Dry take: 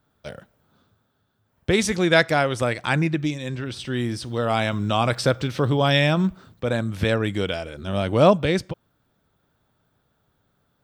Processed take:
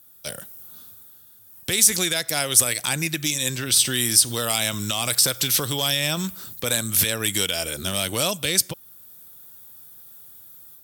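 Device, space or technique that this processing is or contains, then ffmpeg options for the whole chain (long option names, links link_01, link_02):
FM broadcast chain: -filter_complex "[0:a]highpass=73,dynaudnorm=framelen=290:gausssize=3:maxgain=6dB,acrossover=split=1000|2000[link_01][link_02][link_03];[link_01]acompressor=threshold=-24dB:ratio=4[link_04];[link_02]acompressor=threshold=-35dB:ratio=4[link_05];[link_03]acompressor=threshold=-28dB:ratio=4[link_06];[link_04][link_05][link_06]amix=inputs=3:normalize=0,aemphasis=mode=production:type=75fm,alimiter=limit=-12.5dB:level=0:latency=1:release=103,asoftclip=type=hard:threshold=-15.5dB,lowpass=frequency=15000:width=0.5412,lowpass=frequency=15000:width=1.3066,aemphasis=mode=production:type=75fm,volume=-1dB"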